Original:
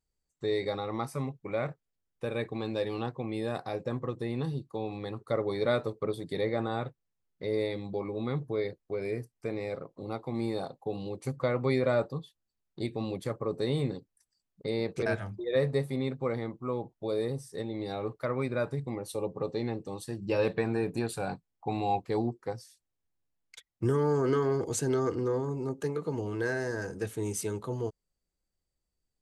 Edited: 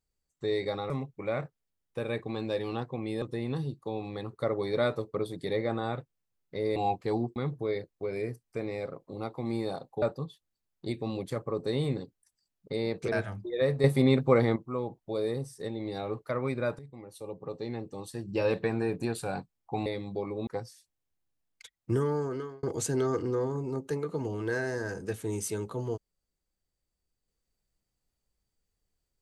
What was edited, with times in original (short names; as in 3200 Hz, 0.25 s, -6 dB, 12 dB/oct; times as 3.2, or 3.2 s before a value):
0.9–1.16 cut
3.48–4.1 cut
7.64–8.25 swap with 21.8–22.4
10.91–11.96 cut
15.78–16.5 gain +9 dB
18.73–20.27 fade in, from -15 dB
23.87–24.56 fade out